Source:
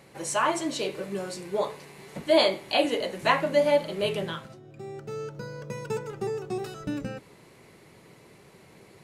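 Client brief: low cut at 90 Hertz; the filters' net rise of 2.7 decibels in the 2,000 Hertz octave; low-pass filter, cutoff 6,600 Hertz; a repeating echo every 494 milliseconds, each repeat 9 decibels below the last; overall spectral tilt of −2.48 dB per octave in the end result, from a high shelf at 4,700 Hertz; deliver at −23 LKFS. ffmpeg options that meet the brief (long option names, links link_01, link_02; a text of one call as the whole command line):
ffmpeg -i in.wav -af "highpass=90,lowpass=6600,equalizer=frequency=2000:width_type=o:gain=4,highshelf=frequency=4700:gain=-4,aecho=1:1:494|988|1482|1976:0.355|0.124|0.0435|0.0152,volume=4.5dB" out.wav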